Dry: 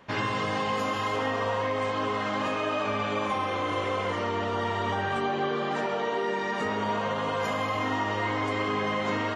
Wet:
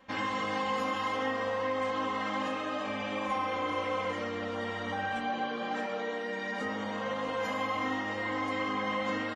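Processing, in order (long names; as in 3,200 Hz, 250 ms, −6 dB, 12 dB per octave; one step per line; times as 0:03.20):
comb filter 3.8 ms, depth 96%
level −8 dB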